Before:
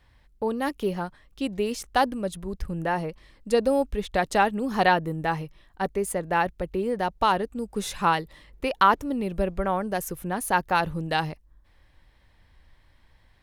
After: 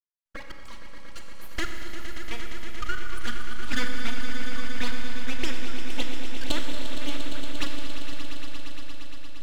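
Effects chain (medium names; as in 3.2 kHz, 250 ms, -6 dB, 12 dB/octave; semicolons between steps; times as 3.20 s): gliding tape speed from 120% -> 165%; dynamic bell 2.9 kHz, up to -5 dB, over -42 dBFS, Q 2.1; touch-sensitive flanger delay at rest 3.4 ms, full sweep at -19 dBFS; elliptic band-pass 650–6300 Hz; full-wave rectifier; trance gate "..xx.x.x.x.xx" 117 bpm; echo with a slow build-up 116 ms, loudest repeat 5, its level -11 dB; Schroeder reverb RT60 2.6 s, combs from 30 ms, DRR 4.5 dB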